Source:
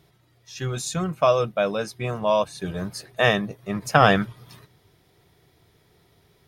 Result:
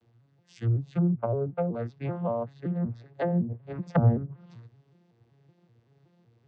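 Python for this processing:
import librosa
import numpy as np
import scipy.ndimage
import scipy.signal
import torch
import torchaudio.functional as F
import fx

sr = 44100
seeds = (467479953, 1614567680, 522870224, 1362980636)

y = fx.vocoder_arp(x, sr, chord='minor triad', root=46, every_ms=189)
y = fx.high_shelf(y, sr, hz=fx.line((2.52, 3600.0), (4.07, 5900.0)), db=-10.5, at=(2.52, 4.07), fade=0.02)
y = fx.env_lowpass_down(y, sr, base_hz=470.0, full_db=-19.0)
y = y * librosa.db_to_amplitude(-3.0)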